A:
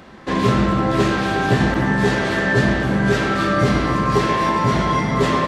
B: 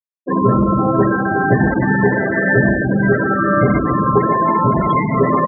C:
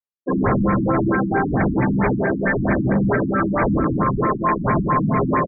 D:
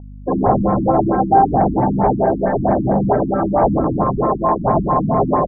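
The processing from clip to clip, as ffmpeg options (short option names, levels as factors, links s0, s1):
-af "highpass=f=110:p=1,afftfilt=real='re*gte(hypot(re,im),0.2)':imag='im*gte(hypot(re,im),0.2)':win_size=1024:overlap=0.75,volume=1.68"
-filter_complex "[0:a]aeval=exprs='0.251*(abs(mod(val(0)/0.251+3,4)-2)-1)':c=same,asplit=7[s0][s1][s2][s3][s4][s5][s6];[s1]adelay=83,afreqshift=38,volume=0.112[s7];[s2]adelay=166,afreqshift=76,volume=0.0733[s8];[s3]adelay=249,afreqshift=114,volume=0.0473[s9];[s4]adelay=332,afreqshift=152,volume=0.0309[s10];[s5]adelay=415,afreqshift=190,volume=0.02[s11];[s6]adelay=498,afreqshift=228,volume=0.013[s12];[s0][s7][s8][s9][s10][s11][s12]amix=inputs=7:normalize=0,afftfilt=real='re*lt(b*sr/1024,310*pow(2500/310,0.5+0.5*sin(2*PI*4.5*pts/sr)))':imag='im*lt(b*sr/1024,310*pow(2500/310,0.5+0.5*sin(2*PI*4.5*pts/sr)))':win_size=1024:overlap=0.75"
-af "aeval=exprs='val(0)+0.02*(sin(2*PI*50*n/s)+sin(2*PI*2*50*n/s)/2+sin(2*PI*3*50*n/s)/3+sin(2*PI*4*50*n/s)/4+sin(2*PI*5*50*n/s)/5)':c=same,lowpass=f=770:t=q:w=4.9"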